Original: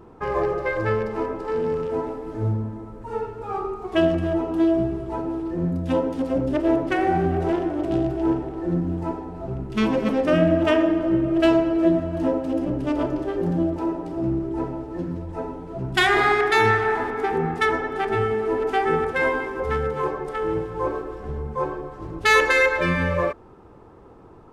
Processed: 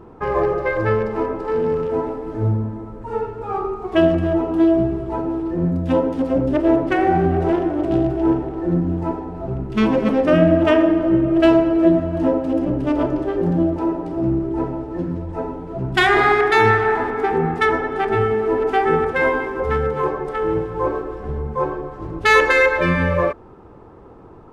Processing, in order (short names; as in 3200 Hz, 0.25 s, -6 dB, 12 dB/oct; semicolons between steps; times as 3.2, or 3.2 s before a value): high shelf 3700 Hz -8 dB; gain +4.5 dB